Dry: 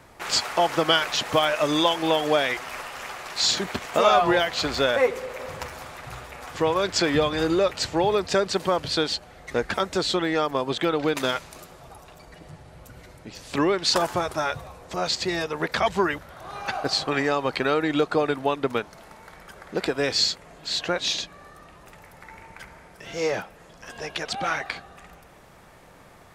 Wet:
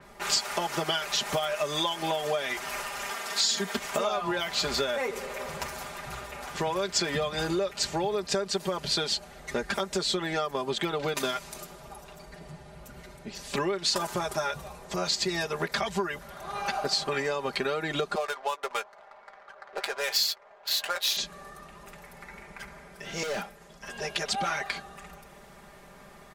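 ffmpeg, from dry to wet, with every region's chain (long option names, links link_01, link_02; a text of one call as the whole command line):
ffmpeg -i in.wav -filter_complex "[0:a]asettb=1/sr,asplit=3[link_01][link_02][link_03];[link_01]atrim=end=3.104[link_04];[link_02]atrim=start=3.1:end=3.78,asetpts=PTS-STARTPTS,afade=type=in:duration=0.004:curve=qsin,afade=type=out:start_time=0.676:duration=0.004:curve=qsin,highpass=95,equalizer=frequency=130:width=2.3:gain=-9,aecho=1:1:4.4:0.64,atrim=end_sample=29988[link_05];[link_03]atrim=start=3.776[link_06];[link_04][link_05]acrossfade=duration=0.004:curve1=hsin:curve2=qsin[link_07];[link_07][link_06]acrossfade=duration=0.004:curve1=qsin:curve2=hsin,asettb=1/sr,asplit=3[link_08][link_09][link_10];[link_08]atrim=end=18.154[link_11];[link_09]atrim=start=18.15:end=21.17,asetpts=PTS-STARTPTS,afade=type=in:duration=0.004:curve=qsin,afade=type=out:start_time=3.016:duration=0.004:curve=qsin,highpass=frequency=590:width=0.5412,highpass=frequency=590:width=1.3066,adynamicsmooth=sensitivity=6.5:basefreq=990,asplit=2[link_12][link_13];[link_13]adelay=13,volume=-13dB[link_14];[link_12][link_14]amix=inputs=2:normalize=0,atrim=end_sample=133182[link_15];[link_10]atrim=start=21.166[link_16];[link_11][link_15]acrossfade=duration=0.004:curve1=hsin:curve2=qsin[link_17];[link_17][link_16]acrossfade=duration=0.004:curve1=qsin:curve2=hsin,asettb=1/sr,asplit=3[link_18][link_19][link_20];[link_18]atrim=end=23.234[link_21];[link_19]atrim=start=23.23:end=23.91,asetpts=PTS-STARTPTS,afade=type=in:duration=0.004:curve=qsin,afade=type=out:start_time=0.676:duration=0.004:curve=qsin,acrossover=split=4500[link_22][link_23];[link_23]acompressor=threshold=-48dB:ratio=4:attack=1:release=60[link_24];[link_22][link_24]amix=inputs=2:normalize=0,agate=range=-33dB:threshold=-47dB:ratio=3:release=100:detection=peak,asoftclip=type=hard:threshold=-29dB[link_25];[link_20]atrim=start=23.906[link_26];[link_21][link_25]acrossfade=duration=0.004:curve1=hsin:curve2=qsin[link_27];[link_27][link_26]acrossfade=duration=0.004:curve1=qsin:curve2=hsin,aecho=1:1:5:0.77,acompressor=threshold=-24dB:ratio=6,adynamicequalizer=threshold=0.00794:dfrequency=4700:dqfactor=0.7:tfrequency=4700:tqfactor=0.7:attack=5:release=100:ratio=0.375:range=3:mode=boostabove:tftype=highshelf,volume=-2dB" out.wav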